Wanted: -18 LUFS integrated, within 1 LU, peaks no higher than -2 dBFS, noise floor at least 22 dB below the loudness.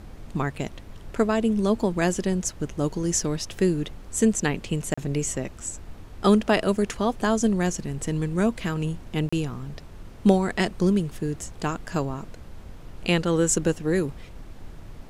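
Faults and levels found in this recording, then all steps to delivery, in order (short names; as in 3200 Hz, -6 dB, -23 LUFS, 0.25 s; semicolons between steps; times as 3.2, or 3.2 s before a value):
dropouts 2; longest dropout 35 ms; noise floor -43 dBFS; noise floor target -48 dBFS; loudness -25.5 LUFS; peak -5.5 dBFS; loudness target -18.0 LUFS
-> interpolate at 4.94/9.29, 35 ms; noise print and reduce 6 dB; gain +7.5 dB; limiter -2 dBFS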